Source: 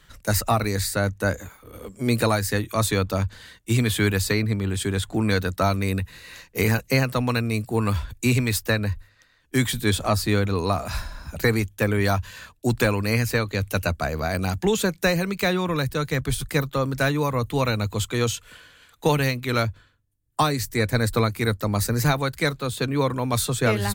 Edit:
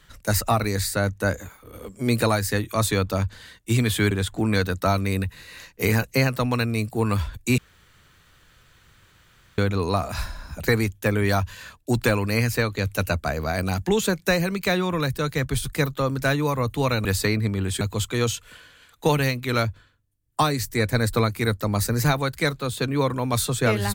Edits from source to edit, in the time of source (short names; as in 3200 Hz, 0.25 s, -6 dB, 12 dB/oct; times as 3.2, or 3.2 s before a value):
4.11–4.87 move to 17.81
8.34–10.34 room tone